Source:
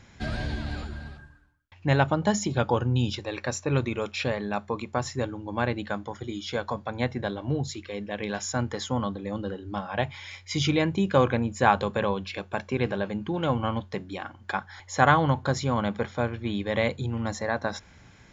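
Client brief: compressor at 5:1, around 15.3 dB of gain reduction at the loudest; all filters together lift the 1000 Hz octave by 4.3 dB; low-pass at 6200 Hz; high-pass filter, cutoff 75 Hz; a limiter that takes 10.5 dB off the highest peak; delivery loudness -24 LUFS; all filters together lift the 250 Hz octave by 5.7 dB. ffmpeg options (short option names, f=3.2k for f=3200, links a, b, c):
-af "highpass=75,lowpass=6.2k,equalizer=f=250:t=o:g=7,equalizer=f=1k:t=o:g=5,acompressor=threshold=-28dB:ratio=5,volume=11dB,alimiter=limit=-12dB:level=0:latency=1"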